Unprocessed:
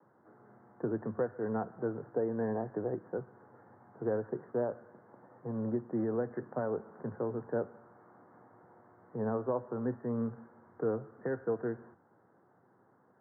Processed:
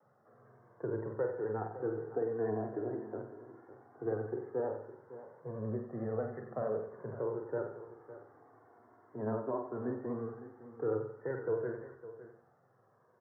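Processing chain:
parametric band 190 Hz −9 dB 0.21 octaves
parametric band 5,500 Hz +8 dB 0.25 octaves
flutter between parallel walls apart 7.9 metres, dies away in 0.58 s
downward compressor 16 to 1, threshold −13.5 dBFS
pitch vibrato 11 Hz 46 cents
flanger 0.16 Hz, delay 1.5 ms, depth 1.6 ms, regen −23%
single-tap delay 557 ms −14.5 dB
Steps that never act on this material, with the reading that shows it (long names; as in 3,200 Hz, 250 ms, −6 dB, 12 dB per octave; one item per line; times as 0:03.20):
parametric band 5,500 Hz: nothing at its input above 1,600 Hz
downward compressor, threshold −13.5 dBFS: peak of its input −19.0 dBFS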